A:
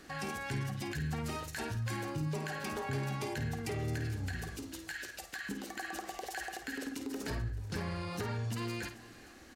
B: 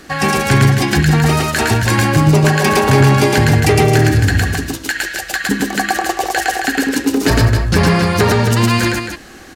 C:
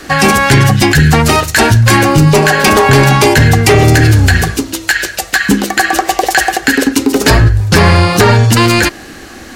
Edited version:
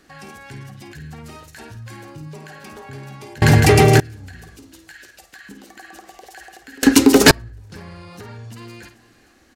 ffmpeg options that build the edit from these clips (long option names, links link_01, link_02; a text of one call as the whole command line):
ffmpeg -i take0.wav -i take1.wav -i take2.wav -filter_complex "[0:a]asplit=3[link_01][link_02][link_03];[link_01]atrim=end=3.422[link_04];[1:a]atrim=start=3.418:end=4.002[link_05];[link_02]atrim=start=3.998:end=6.832[link_06];[2:a]atrim=start=6.828:end=7.312[link_07];[link_03]atrim=start=7.308[link_08];[link_04][link_05]acrossfade=duration=0.004:curve1=hsin:curve2=hsin[link_09];[link_09][link_06]acrossfade=duration=0.004:curve1=hsin:curve2=hsin[link_10];[link_10][link_07]acrossfade=duration=0.004:curve1=hsin:curve2=hsin[link_11];[link_11][link_08]acrossfade=duration=0.004:curve1=hsin:curve2=hsin" out.wav